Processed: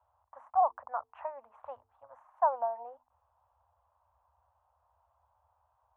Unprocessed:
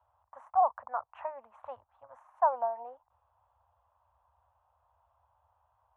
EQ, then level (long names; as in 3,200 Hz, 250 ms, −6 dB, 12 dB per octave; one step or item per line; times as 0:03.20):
parametric band 170 Hz −11 dB 0.65 octaves
high-shelf EQ 2,500 Hz −8 dB
mains-hum notches 50/100/150/200/250/300/350/400/450 Hz
0.0 dB